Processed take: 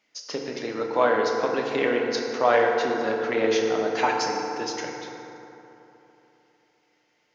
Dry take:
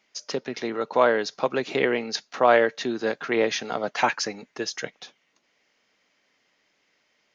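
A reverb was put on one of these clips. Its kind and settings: FDN reverb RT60 3.3 s, high-frequency decay 0.45×, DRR 0 dB; trim -3.5 dB

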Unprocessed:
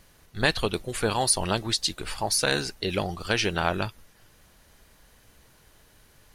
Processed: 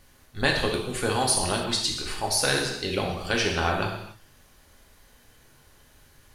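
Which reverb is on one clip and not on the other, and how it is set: gated-style reverb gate 320 ms falling, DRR 0 dB; trim -2 dB

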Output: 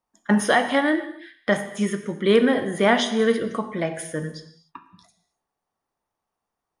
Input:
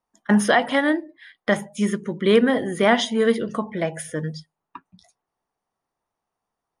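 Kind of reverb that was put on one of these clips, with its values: gated-style reverb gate 320 ms falling, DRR 7.5 dB; trim -1 dB

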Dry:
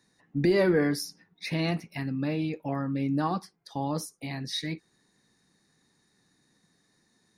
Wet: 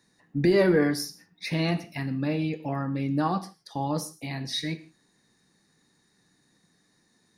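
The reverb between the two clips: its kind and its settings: gated-style reverb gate 190 ms falling, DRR 10 dB; trim +1.5 dB

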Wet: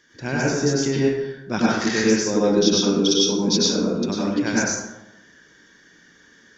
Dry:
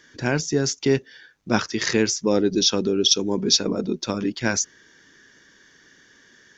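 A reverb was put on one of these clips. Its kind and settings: plate-style reverb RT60 0.95 s, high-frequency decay 0.5×, pre-delay 85 ms, DRR -6 dB; trim -5.5 dB

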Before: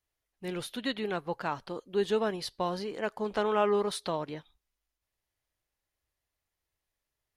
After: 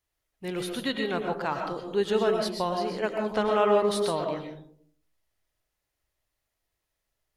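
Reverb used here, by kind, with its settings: algorithmic reverb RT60 0.6 s, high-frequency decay 0.3×, pre-delay 80 ms, DRR 3 dB; trim +2.5 dB

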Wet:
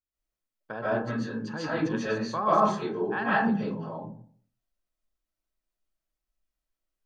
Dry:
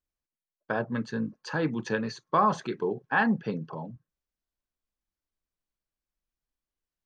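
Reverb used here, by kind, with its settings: algorithmic reverb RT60 0.52 s, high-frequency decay 0.4×, pre-delay 105 ms, DRR -9.5 dB; trim -8 dB

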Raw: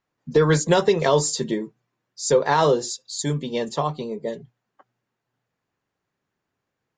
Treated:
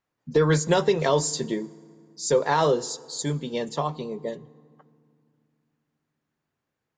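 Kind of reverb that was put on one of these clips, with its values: FDN reverb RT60 2.2 s, low-frequency decay 1.55×, high-frequency decay 0.65×, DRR 20 dB; trim -3 dB

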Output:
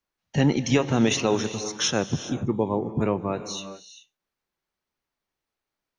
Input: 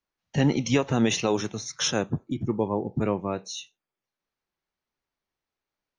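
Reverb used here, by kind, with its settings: gated-style reverb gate 440 ms rising, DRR 11.5 dB; trim +1.5 dB

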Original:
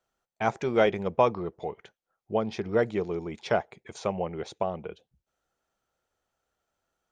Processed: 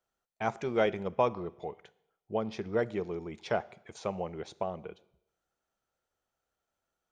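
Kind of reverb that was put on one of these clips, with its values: Schroeder reverb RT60 0.82 s, combs from 25 ms, DRR 19.5 dB; trim -5 dB

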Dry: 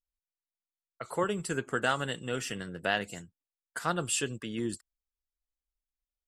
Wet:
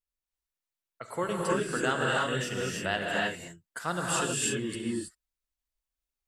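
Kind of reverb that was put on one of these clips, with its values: gated-style reverb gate 350 ms rising, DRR -3.5 dB; trim -2 dB

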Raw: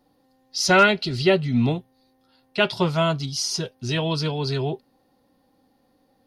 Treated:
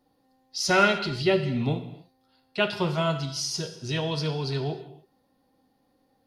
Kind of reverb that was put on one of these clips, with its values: gated-style reverb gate 330 ms falling, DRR 7 dB; trim -5 dB

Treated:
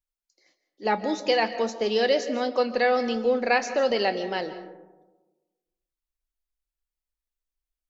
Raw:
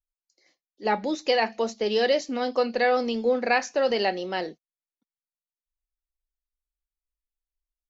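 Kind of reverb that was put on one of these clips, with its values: algorithmic reverb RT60 1.2 s, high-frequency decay 0.3×, pre-delay 105 ms, DRR 11.5 dB

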